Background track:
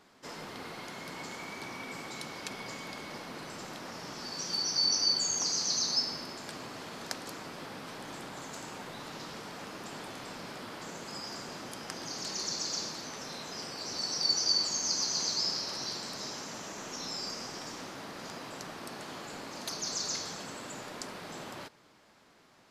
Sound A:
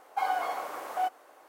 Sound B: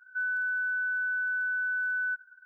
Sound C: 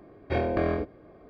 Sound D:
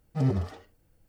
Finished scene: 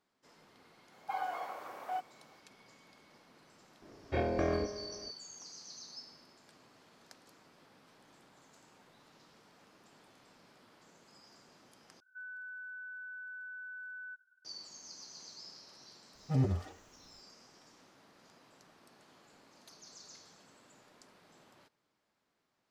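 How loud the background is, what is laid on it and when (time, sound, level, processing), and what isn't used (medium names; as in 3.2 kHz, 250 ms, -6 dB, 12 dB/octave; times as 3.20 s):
background track -19.5 dB
0.92 s: add A -8 dB + peaking EQ 10 kHz -7 dB 1.4 oct
3.82 s: add C -5.5 dB + multi-head delay 68 ms, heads all three, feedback 62%, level -20 dB
12.00 s: replace with B -16 dB
16.14 s: add D -4 dB + comb of notches 220 Hz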